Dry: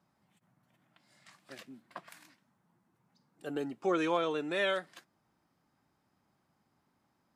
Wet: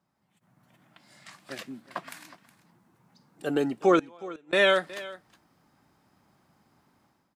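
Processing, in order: AGC gain up to 13 dB; 3.99–4.53 flipped gate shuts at -18 dBFS, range -31 dB; on a send: echo 0.366 s -18 dB; on the sum: gain -3 dB

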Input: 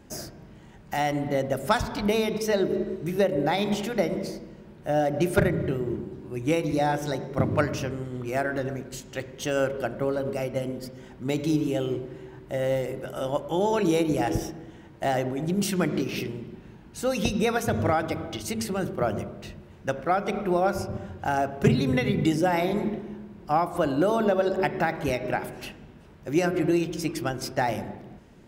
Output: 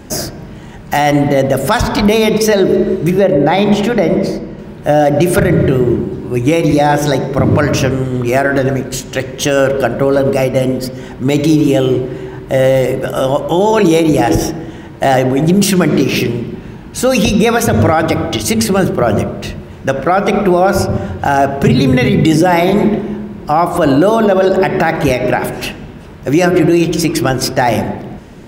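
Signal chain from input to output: 3.1–4.59 high shelf 4100 Hz -11 dB; maximiser +18.5 dB; gain -1 dB

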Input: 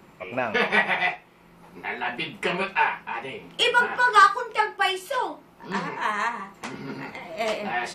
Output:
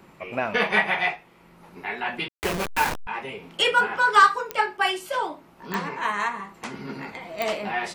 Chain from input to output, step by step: 2.28–3.07 level-crossing sampler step -21.5 dBFS; pops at 4.51/5.74/7.42, -12 dBFS

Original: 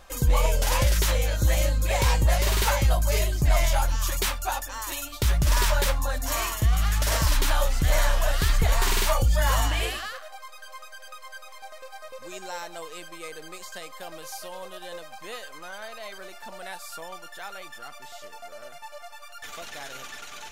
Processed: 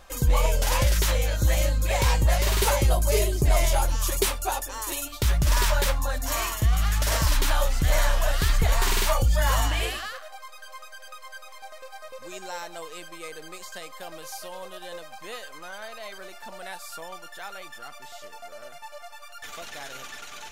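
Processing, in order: 2.62–5.08 fifteen-band EQ 400 Hz +10 dB, 1600 Hz -3 dB, 10000 Hz +5 dB

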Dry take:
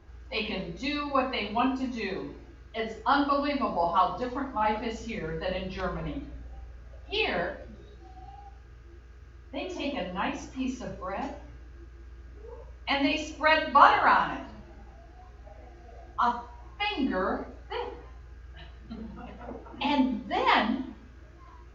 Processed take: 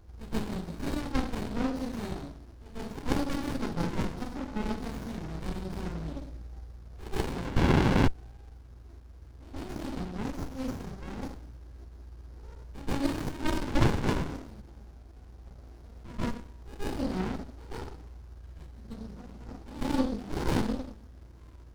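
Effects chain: resonant high shelf 3600 Hz +11.5 dB, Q 3; painted sound noise, 7.56–8.08, 540–1800 Hz -18 dBFS; reverse echo 0.133 s -15 dB; running maximum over 65 samples

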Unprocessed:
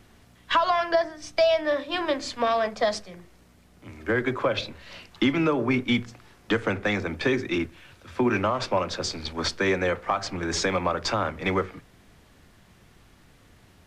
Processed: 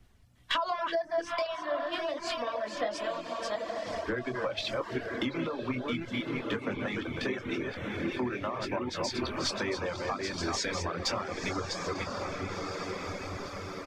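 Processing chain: reverse delay 0.356 s, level -3.5 dB; on a send: diffused feedback echo 1.01 s, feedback 42%, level -5 dB; on the sum: compressor 8:1, threshold -33 dBFS, peak gain reduction 18 dB; in parallel at -6 dB: hard clip -29 dBFS, distortion -21 dB; on the sum: doubler 24 ms -9 dB; reverb removal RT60 0.62 s; three-band expander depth 70%

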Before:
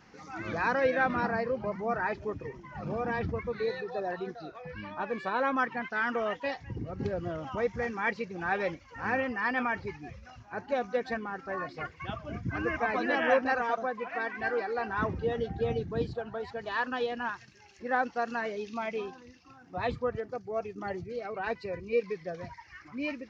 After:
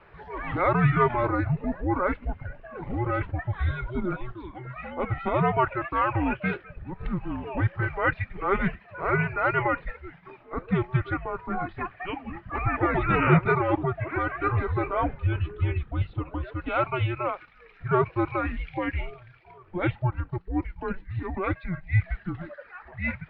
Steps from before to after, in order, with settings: mistuned SSB -370 Hz 320–3400 Hz; dynamic EQ 2400 Hz, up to +7 dB, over -59 dBFS, Q 5.3; gain +6 dB

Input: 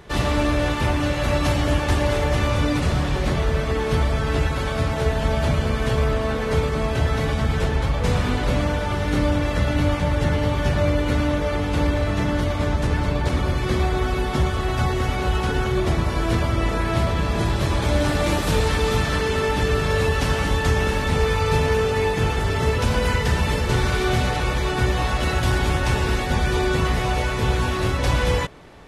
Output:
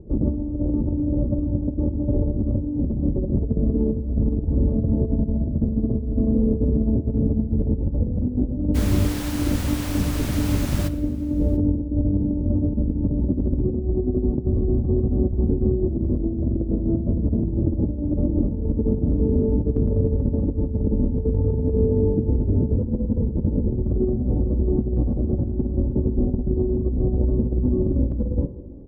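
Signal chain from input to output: inverse Chebyshev low-pass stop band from 2400 Hz, stop band 80 dB; comb 3.5 ms, depth 34%; dynamic EQ 230 Hz, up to +6 dB, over -41 dBFS, Q 3.9; negative-ratio compressor -23 dBFS, ratio -0.5; 8.74–10.87 added noise pink -35 dBFS; echo 0.689 s -23.5 dB; plate-style reverb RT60 1.3 s, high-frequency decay 0.8×, DRR 12 dB; gain +2.5 dB

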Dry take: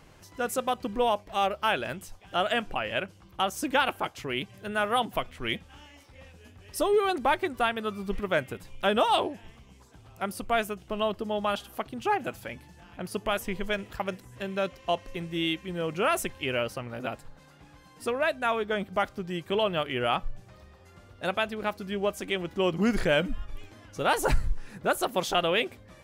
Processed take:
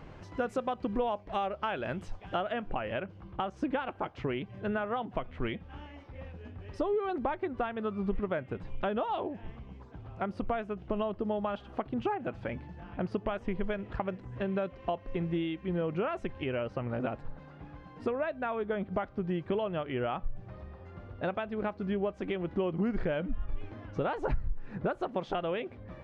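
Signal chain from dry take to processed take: compressor 6:1, threshold -34 dBFS, peak gain reduction 16 dB; tape spacing loss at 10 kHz 29 dB, from 2.4 s at 10 kHz 42 dB; gain +7.5 dB

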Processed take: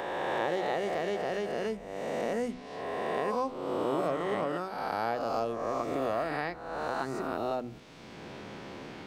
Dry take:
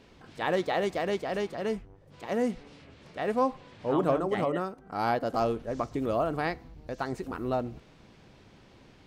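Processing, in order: spectral swells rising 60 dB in 1.55 s; low shelf 130 Hz -7 dB; de-hum 62.95 Hz, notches 5; three-band squash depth 70%; gain -5.5 dB

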